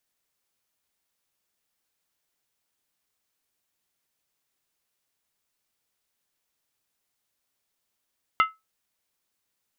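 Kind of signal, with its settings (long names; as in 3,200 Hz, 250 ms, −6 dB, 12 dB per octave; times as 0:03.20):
struck skin, lowest mode 1,300 Hz, decay 0.20 s, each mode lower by 6.5 dB, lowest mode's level −13 dB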